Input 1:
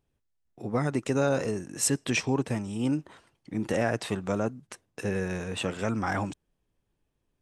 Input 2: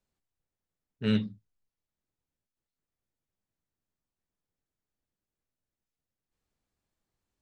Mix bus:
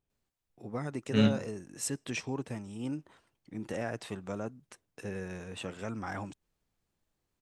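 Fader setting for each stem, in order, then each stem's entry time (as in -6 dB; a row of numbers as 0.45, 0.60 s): -9.0, +1.5 dB; 0.00, 0.10 s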